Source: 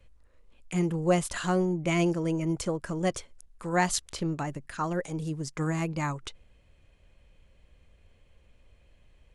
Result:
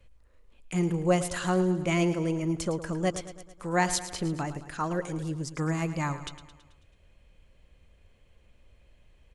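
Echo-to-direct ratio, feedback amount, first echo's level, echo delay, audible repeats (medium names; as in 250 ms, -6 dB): -11.5 dB, 56%, -13.0 dB, 109 ms, 5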